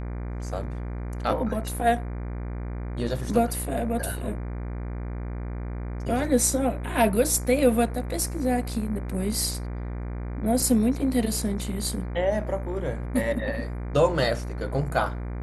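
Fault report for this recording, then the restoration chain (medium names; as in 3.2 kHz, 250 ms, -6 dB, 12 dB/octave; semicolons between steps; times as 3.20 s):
buzz 60 Hz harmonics 40 -32 dBFS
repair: de-hum 60 Hz, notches 40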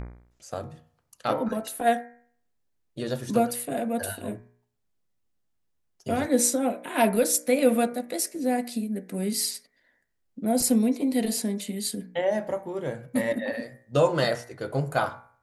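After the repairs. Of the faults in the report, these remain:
nothing left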